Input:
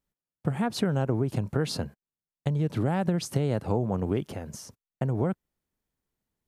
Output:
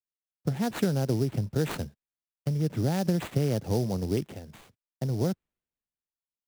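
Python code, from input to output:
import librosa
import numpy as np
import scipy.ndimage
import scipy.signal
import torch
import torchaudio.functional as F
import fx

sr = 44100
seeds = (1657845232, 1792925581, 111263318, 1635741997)

y = fx.peak_eq(x, sr, hz=1100.0, db=-8.0, octaves=0.9)
y = fx.sample_hold(y, sr, seeds[0], rate_hz=5400.0, jitter_pct=20)
y = fx.band_widen(y, sr, depth_pct=70)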